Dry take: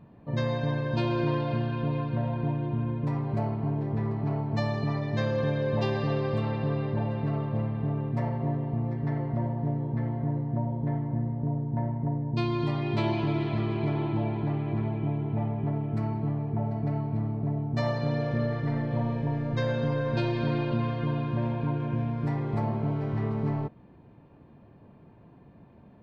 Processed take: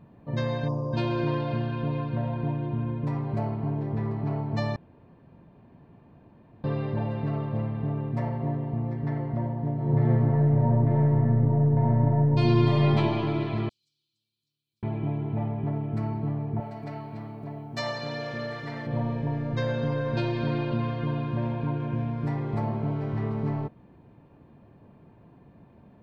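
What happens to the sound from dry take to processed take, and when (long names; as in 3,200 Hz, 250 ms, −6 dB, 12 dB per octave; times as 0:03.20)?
0:00.68–0:00.94: gain on a spectral selection 1,300–4,400 Hz −29 dB
0:04.76–0:06.64: fill with room tone
0:09.73–0:12.88: thrown reverb, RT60 2.3 s, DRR −6 dB
0:13.69–0:14.83: inverse Chebyshev high-pass filter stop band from 2,000 Hz, stop band 60 dB
0:16.60–0:18.87: spectral tilt +3.5 dB per octave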